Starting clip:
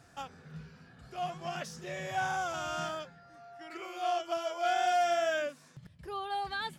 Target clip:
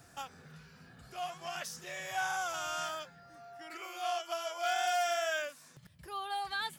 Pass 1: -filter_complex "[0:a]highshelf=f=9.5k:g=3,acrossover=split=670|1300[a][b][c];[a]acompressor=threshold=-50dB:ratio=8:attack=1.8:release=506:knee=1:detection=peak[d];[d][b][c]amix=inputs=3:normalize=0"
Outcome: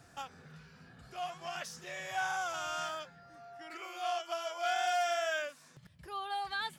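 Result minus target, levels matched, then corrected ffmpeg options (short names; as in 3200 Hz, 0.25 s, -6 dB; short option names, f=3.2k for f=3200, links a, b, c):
8000 Hz band -3.0 dB
-filter_complex "[0:a]highshelf=f=9.5k:g=13.5,acrossover=split=670|1300[a][b][c];[a]acompressor=threshold=-50dB:ratio=8:attack=1.8:release=506:knee=1:detection=peak[d];[d][b][c]amix=inputs=3:normalize=0"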